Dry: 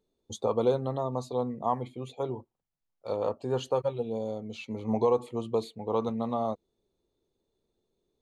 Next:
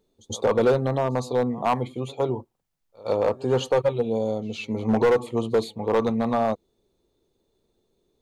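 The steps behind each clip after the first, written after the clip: pre-echo 0.112 s -23 dB; overloaded stage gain 22.5 dB; gain +8 dB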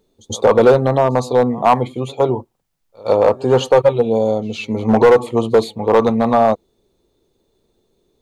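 dynamic EQ 780 Hz, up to +4 dB, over -31 dBFS, Q 0.81; gain +7 dB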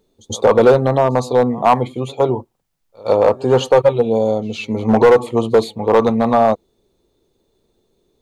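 nothing audible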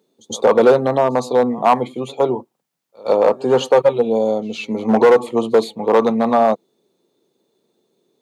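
HPF 160 Hz 24 dB/oct; gain -1 dB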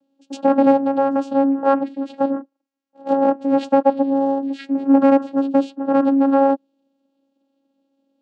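vocoder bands 8, saw 274 Hz; gain -1 dB

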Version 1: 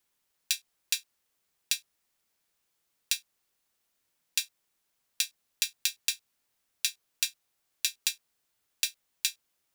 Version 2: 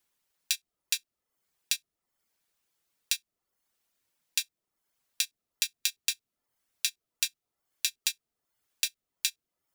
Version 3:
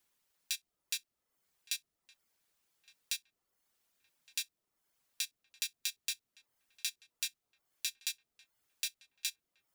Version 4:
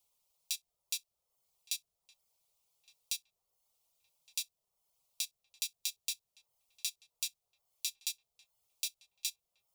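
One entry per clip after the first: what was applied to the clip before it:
reverb removal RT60 0.52 s
limiter -14.5 dBFS, peak gain reduction 10.5 dB; darkening echo 1.165 s, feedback 59%, low-pass 1500 Hz, level -16.5 dB
fixed phaser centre 690 Hz, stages 4; gain +1.5 dB

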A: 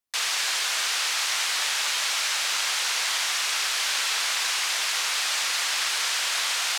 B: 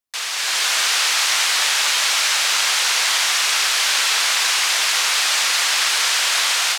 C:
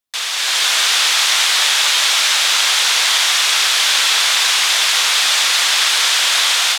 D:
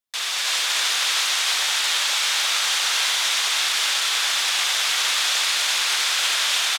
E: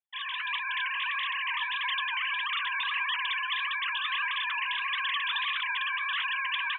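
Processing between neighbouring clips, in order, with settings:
AGC gain up to 8 dB
bell 3500 Hz +5 dB 0.35 oct; gain +2.5 dB
limiter -9.5 dBFS, peak gain reduction 7.5 dB; echo 0.313 s -3.5 dB; on a send at -7 dB: reverb RT60 0.45 s, pre-delay 56 ms; on the sum: gain -5 dB
sine-wave speech; flange 1.6 Hz, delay 4.7 ms, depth 5.9 ms, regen +69%; gain -5 dB

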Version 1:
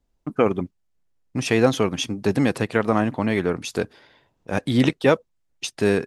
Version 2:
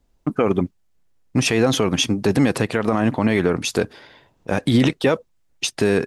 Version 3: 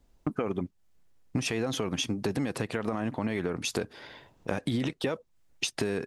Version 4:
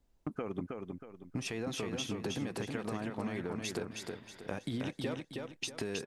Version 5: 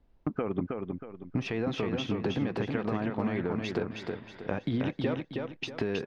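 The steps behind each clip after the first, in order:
limiter -14.5 dBFS, peak gain reduction 10.5 dB; gain +7.5 dB
compressor 5:1, threshold -28 dBFS, peak gain reduction 14.5 dB
feedback echo 0.318 s, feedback 36%, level -4 dB; gain -8 dB
air absorption 270 m; gain +7.5 dB

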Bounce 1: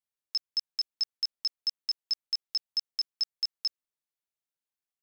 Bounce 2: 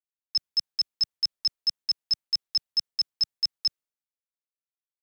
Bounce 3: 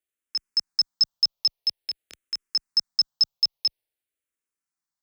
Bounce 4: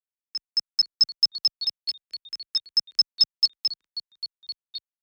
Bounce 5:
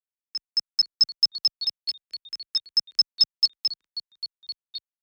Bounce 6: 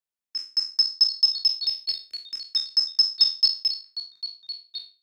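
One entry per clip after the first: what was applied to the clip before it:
three-band expander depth 100%; gain +4.5 dB
compressor, threshold -25 dBFS, peak gain reduction 6 dB; endless phaser -0.49 Hz; gain +8.5 dB
in parallel at 0 dB: limiter -21.5 dBFS, peak gain reduction 10 dB; on the sum: echoes that change speed 0.412 s, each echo -3 st, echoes 2, each echo -6 dB; upward expander 2.5:1, over -31 dBFS
nothing audible
spectral trails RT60 0.34 s

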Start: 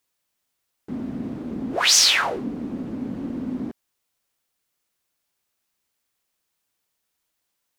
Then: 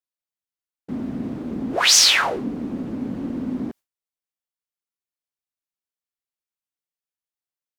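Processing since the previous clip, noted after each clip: gate with hold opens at -30 dBFS; gain +2 dB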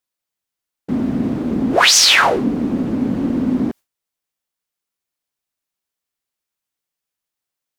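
maximiser +10 dB; gain -1 dB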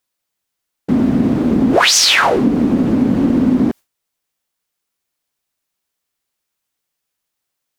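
compressor 6:1, threshold -15 dBFS, peak gain reduction 7.5 dB; gain +6.5 dB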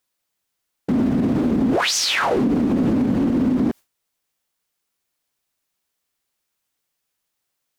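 limiter -12 dBFS, peak gain reduction 10 dB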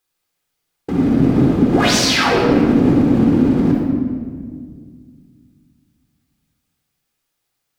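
shoebox room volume 2900 m³, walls mixed, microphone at 3.9 m; gain -1.5 dB

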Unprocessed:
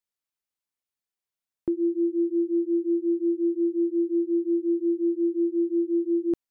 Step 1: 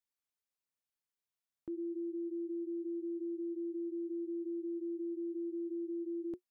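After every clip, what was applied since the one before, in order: notch 360 Hz, Q 12; limiter -30.5 dBFS, peak gain reduction 11 dB; gain -4.5 dB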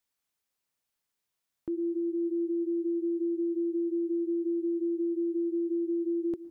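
reverb RT60 3.6 s, pre-delay 0.105 s, DRR 15 dB; gain +8 dB

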